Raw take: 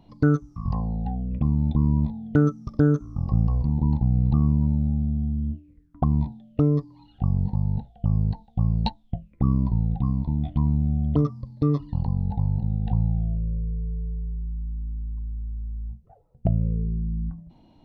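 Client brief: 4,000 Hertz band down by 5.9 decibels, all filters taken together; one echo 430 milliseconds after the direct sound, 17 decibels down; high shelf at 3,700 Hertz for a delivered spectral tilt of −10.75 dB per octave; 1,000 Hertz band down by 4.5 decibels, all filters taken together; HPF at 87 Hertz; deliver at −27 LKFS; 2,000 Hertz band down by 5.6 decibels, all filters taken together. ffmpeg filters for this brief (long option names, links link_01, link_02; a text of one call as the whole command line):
ffmpeg -i in.wav -af "highpass=87,equalizer=frequency=1000:width_type=o:gain=-4.5,equalizer=frequency=2000:width_type=o:gain=-6,highshelf=frequency=3700:gain=3,equalizer=frequency=4000:width_type=o:gain=-6.5,aecho=1:1:430:0.141,volume=-0.5dB" out.wav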